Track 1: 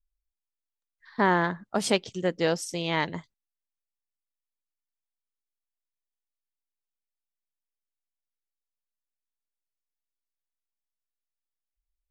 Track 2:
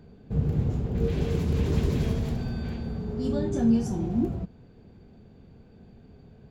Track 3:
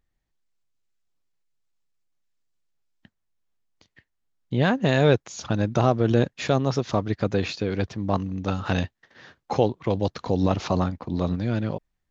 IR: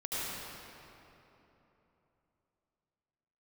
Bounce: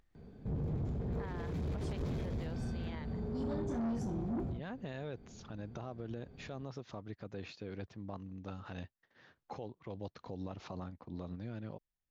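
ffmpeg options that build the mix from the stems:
-filter_complex "[0:a]volume=-18dB[a];[1:a]bandreject=f=2.8k:w=9.2,asoftclip=type=tanh:threshold=-26.5dB,adelay=150,volume=-3dB[b];[2:a]acompressor=mode=upward:threshold=-38dB:ratio=2.5,volume=-16.5dB[c];[a][b][c]amix=inputs=3:normalize=0,highshelf=f=6.1k:g=-9.5,alimiter=level_in=8.5dB:limit=-24dB:level=0:latency=1:release=114,volume=-8.5dB"

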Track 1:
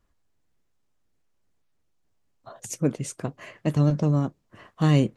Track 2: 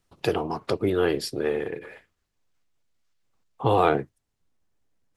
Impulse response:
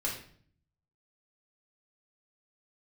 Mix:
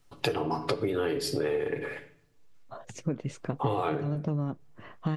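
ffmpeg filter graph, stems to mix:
-filter_complex "[0:a]lowpass=3.3k,alimiter=limit=-13dB:level=0:latency=1:release=324,adelay=250,volume=0.5dB[a];[1:a]aecho=1:1:7:0.44,volume=2dB,asplit=2[b][c];[c]volume=-9dB[d];[2:a]atrim=start_sample=2205[e];[d][e]afir=irnorm=-1:irlink=0[f];[a][b][f]amix=inputs=3:normalize=0,acompressor=threshold=-25dB:ratio=12"

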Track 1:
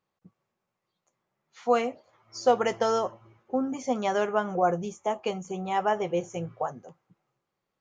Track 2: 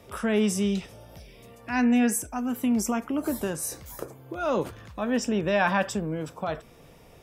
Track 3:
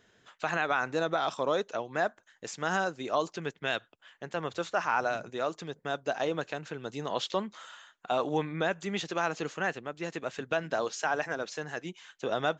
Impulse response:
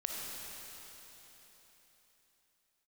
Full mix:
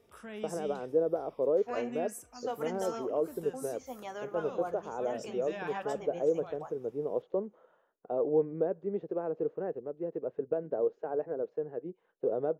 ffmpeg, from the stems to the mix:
-filter_complex "[0:a]agate=range=-33dB:threshold=-51dB:ratio=3:detection=peak,volume=-14dB,asplit=2[a][b];[b]volume=-21.5dB[c];[1:a]volume=-16.5dB[d];[2:a]lowpass=f=460:t=q:w=3.7,volume=-2.5dB[e];[3:a]atrim=start_sample=2205[f];[c][f]afir=irnorm=-1:irlink=0[g];[a][d][e][g]amix=inputs=4:normalize=0,lowshelf=f=470:g=-5"

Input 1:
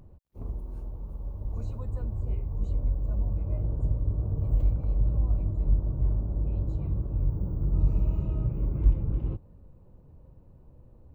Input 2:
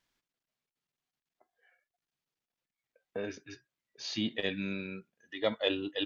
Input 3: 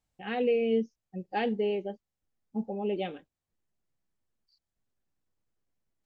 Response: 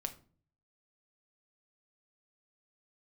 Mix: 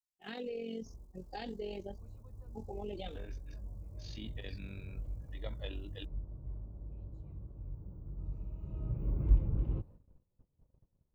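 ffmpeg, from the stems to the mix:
-filter_complex "[0:a]adelay=450,volume=-4.5dB,afade=t=in:st=8.59:d=0.61:silence=0.223872[a];[1:a]volume=-11.5dB[b];[2:a]aexciter=amount=8.9:drive=4.2:freq=3.8k,flanger=delay=2.4:depth=5.2:regen=-32:speed=0.39:shape=sinusoidal,volume=-1dB[c];[b][c]amix=inputs=2:normalize=0,tremolo=f=45:d=0.621,alimiter=level_in=8.5dB:limit=-24dB:level=0:latency=1:release=95,volume=-8.5dB,volume=0dB[d];[a][d]amix=inputs=2:normalize=0,agate=range=-24dB:threshold=-52dB:ratio=16:detection=peak"

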